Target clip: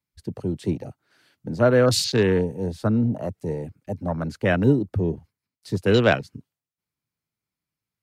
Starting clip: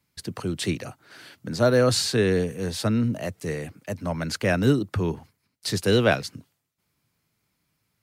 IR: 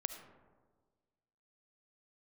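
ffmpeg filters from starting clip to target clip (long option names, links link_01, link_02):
-af "afwtdn=0.0282,volume=2dB"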